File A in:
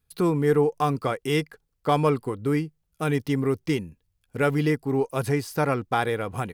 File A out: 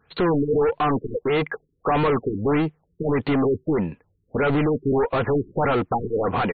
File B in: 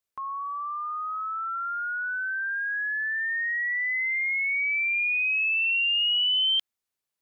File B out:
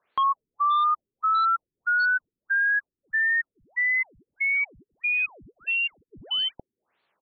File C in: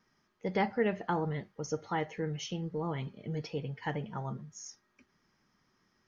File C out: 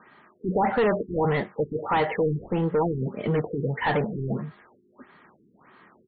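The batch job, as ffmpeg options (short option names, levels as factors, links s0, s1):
-filter_complex "[0:a]aresample=32000,aresample=44100,asplit=2[s0][s1];[s1]highpass=f=720:p=1,volume=63.1,asoftclip=type=tanh:threshold=0.376[s2];[s0][s2]amix=inputs=2:normalize=0,lowpass=f=1500:p=1,volume=0.501,afftfilt=real='re*lt(b*sr/1024,420*pow(4600/420,0.5+0.5*sin(2*PI*1.6*pts/sr)))':imag='im*lt(b*sr/1024,420*pow(4600/420,0.5+0.5*sin(2*PI*1.6*pts/sr)))':win_size=1024:overlap=0.75,volume=0.631"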